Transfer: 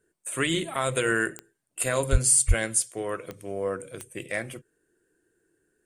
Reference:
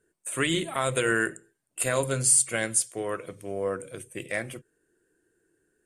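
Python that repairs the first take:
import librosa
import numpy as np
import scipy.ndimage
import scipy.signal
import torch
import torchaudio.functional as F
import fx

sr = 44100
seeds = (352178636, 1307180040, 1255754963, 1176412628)

y = fx.fix_declick_ar(x, sr, threshold=10.0)
y = fx.highpass(y, sr, hz=140.0, slope=24, at=(2.11, 2.23), fade=0.02)
y = fx.highpass(y, sr, hz=140.0, slope=24, at=(2.47, 2.59), fade=0.02)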